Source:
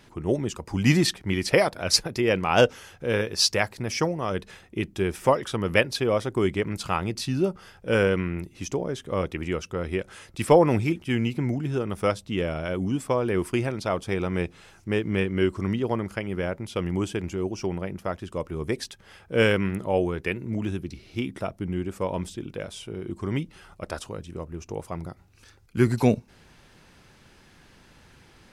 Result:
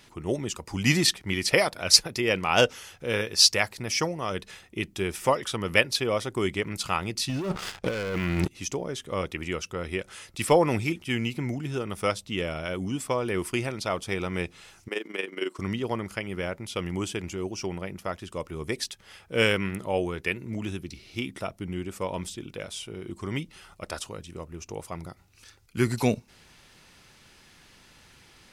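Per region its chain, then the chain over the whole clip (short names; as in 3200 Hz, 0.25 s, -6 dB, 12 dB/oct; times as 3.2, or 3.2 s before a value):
7.29–8.51 air absorption 51 m + sample leveller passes 3 + negative-ratio compressor -24 dBFS
14.88–15.59 HPF 300 Hz 24 dB/oct + AM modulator 22 Hz, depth 55%
whole clip: tilt shelf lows -4.5 dB, about 1400 Hz; notch 1600 Hz, Q 17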